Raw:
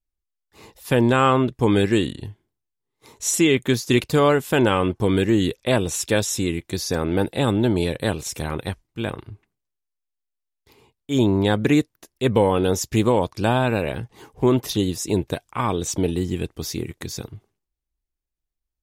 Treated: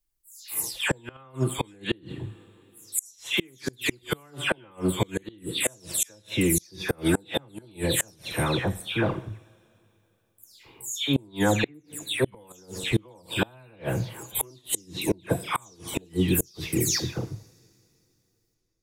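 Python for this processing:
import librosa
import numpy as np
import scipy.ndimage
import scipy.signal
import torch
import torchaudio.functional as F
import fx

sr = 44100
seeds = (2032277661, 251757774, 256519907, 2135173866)

y = fx.spec_delay(x, sr, highs='early', ms=283)
y = fx.high_shelf(y, sr, hz=4300.0, db=10.5)
y = fx.rider(y, sr, range_db=3, speed_s=0.5)
y = fx.rev_double_slope(y, sr, seeds[0], early_s=0.57, late_s=3.1, knee_db=-21, drr_db=12.0)
y = fx.gate_flip(y, sr, shuts_db=-11.0, range_db=-32)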